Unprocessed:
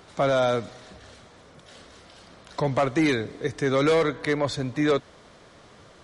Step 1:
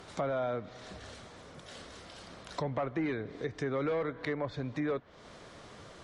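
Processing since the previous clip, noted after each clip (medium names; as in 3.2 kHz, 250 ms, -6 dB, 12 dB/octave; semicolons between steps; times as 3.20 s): low-pass that closes with the level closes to 2.1 kHz, closed at -21.5 dBFS; compression 2:1, threshold -39 dBFS, peak gain reduction 11.5 dB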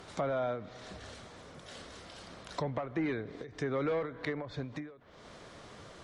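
endings held to a fixed fall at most 110 dB/s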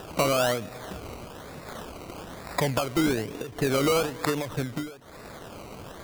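upward compressor, threshold -49 dBFS; decimation with a swept rate 20×, swing 60% 1.1 Hz; trim +9 dB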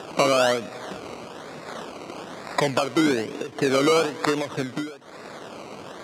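band-pass 200–7300 Hz; trim +4.5 dB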